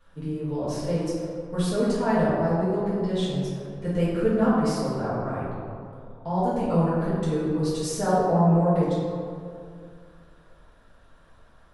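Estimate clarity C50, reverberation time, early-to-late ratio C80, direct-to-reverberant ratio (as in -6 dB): -2.0 dB, 2.4 s, 0.0 dB, -11.5 dB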